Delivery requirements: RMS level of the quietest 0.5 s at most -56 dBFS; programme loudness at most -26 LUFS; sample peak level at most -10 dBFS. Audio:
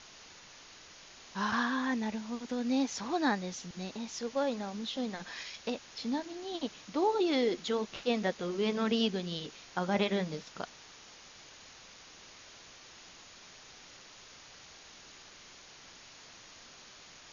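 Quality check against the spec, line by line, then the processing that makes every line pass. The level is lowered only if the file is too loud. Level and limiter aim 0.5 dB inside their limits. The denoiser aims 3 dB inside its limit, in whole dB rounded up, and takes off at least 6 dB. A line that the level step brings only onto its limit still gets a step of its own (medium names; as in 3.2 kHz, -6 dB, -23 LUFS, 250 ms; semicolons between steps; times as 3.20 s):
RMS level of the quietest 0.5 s -54 dBFS: fail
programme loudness -34.0 LUFS: pass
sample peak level -17.0 dBFS: pass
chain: noise reduction 6 dB, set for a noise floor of -54 dBFS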